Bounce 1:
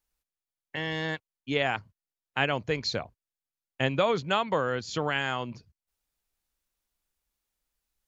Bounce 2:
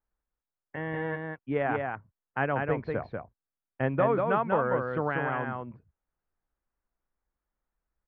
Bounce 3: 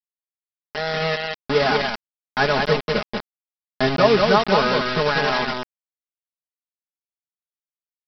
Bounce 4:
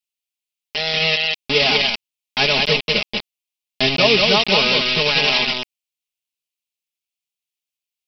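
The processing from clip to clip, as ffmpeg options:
-filter_complex "[0:a]lowpass=f=1700:w=0.5412,lowpass=f=1700:w=1.3066,asplit=2[s0][s1];[s1]aecho=0:1:191:0.631[s2];[s0][s2]amix=inputs=2:normalize=0"
-af "aresample=11025,acrusher=bits=4:mix=0:aa=0.000001,aresample=44100,aecho=1:1:4.8:0.94,volume=2"
-af "highshelf=f=2000:t=q:w=3:g=8.5,volume=0.891"

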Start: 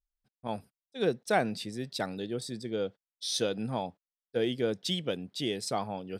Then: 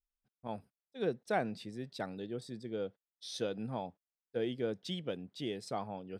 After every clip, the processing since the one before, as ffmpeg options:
-af "highshelf=f=3700:g=-10,volume=0.531"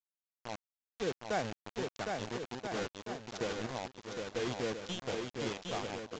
-filter_complex "[0:a]acrusher=bits=5:mix=0:aa=0.000001,asplit=2[s0][s1];[s1]aecho=0:1:760|1330|1758|2078|2319:0.631|0.398|0.251|0.158|0.1[s2];[s0][s2]amix=inputs=2:normalize=0,aresample=16000,aresample=44100,volume=0.794"

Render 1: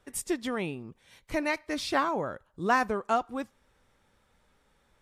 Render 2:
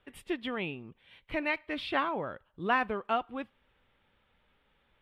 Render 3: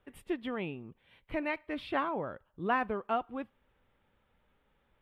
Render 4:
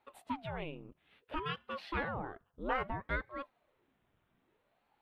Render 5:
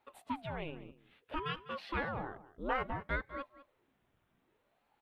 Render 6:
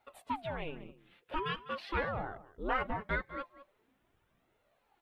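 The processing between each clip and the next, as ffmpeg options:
-af "highshelf=f=4400:t=q:w=3:g=-13.5,volume=0.631"
-af "equalizer=f=4200:w=0.45:g=-8"
-af "aeval=exprs='val(0)*sin(2*PI*470*n/s+470*0.8/0.6*sin(2*PI*0.6*n/s))':c=same,volume=0.841"
-af "aecho=1:1:201:0.15"
-af "flanger=delay=1.4:depth=4.4:regen=40:speed=0.44:shape=sinusoidal,volume=2"

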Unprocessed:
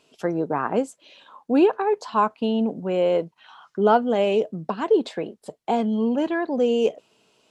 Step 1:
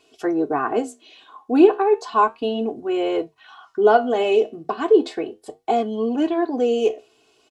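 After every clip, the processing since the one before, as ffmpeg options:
-af "aecho=1:1:2.7:0.94,flanger=delay=8.9:depth=7.3:regen=-71:speed=0.34:shape=sinusoidal,bandreject=f=50:t=h:w=6,bandreject=f=100:t=h:w=6,volume=1.58"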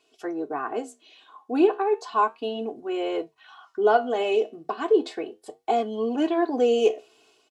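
-af "lowshelf=f=170:g=-12,dynaudnorm=f=660:g=3:m=3.76,volume=0.447"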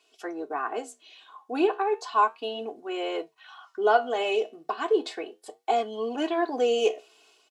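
-af "highpass=f=700:p=1,volume=1.26"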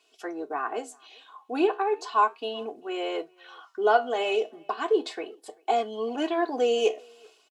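-filter_complex "[0:a]asplit=2[s0][s1];[s1]adelay=390,highpass=300,lowpass=3400,asoftclip=type=hard:threshold=0.126,volume=0.0398[s2];[s0][s2]amix=inputs=2:normalize=0"

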